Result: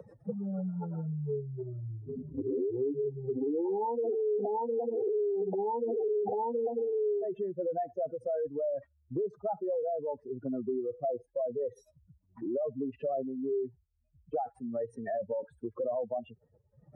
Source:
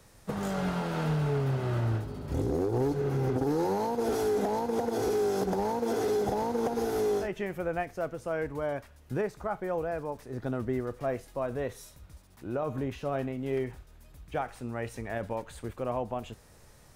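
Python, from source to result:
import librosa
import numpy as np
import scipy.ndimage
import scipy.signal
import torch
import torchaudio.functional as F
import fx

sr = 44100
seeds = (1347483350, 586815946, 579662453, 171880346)

y = fx.spec_expand(x, sr, power=3.6)
y = scipy.signal.sosfilt(scipy.signal.butter(2, 280.0, 'highpass', fs=sr, output='sos'), y)
y = fx.band_squash(y, sr, depth_pct=70)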